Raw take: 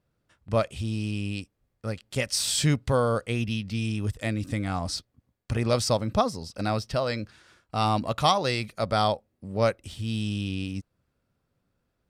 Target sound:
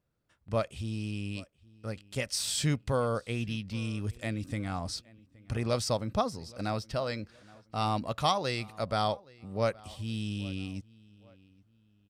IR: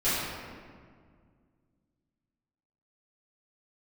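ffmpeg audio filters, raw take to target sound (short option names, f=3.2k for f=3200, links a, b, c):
-filter_complex "[0:a]asplit=2[a][b];[b]adelay=821,lowpass=f=3.4k:p=1,volume=-23dB,asplit=2[c][d];[d]adelay=821,lowpass=f=3.4k:p=1,volume=0.37[e];[a][c][e]amix=inputs=3:normalize=0,volume=-5.5dB"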